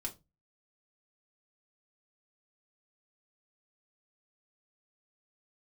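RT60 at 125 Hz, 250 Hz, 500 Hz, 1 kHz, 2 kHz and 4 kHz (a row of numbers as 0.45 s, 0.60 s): 0.45 s, 0.35 s, 0.25 s, 0.20 s, 0.20 s, 0.20 s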